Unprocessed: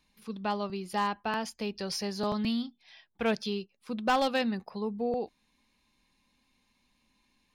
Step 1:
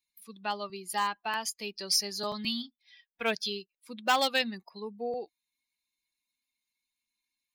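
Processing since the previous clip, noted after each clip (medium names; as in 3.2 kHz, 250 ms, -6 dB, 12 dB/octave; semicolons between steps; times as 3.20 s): expander on every frequency bin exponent 1.5; tilt EQ +3.5 dB/octave; trim +2 dB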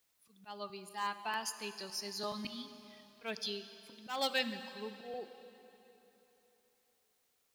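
slow attack 182 ms; plate-style reverb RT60 3.5 s, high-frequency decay 0.85×, DRR 10 dB; word length cut 12-bit, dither triangular; trim -5.5 dB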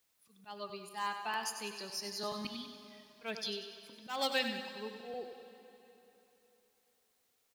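feedback delay 96 ms, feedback 50%, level -9 dB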